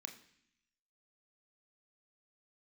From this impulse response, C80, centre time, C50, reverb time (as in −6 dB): 14.5 dB, 14 ms, 11.5 dB, 0.65 s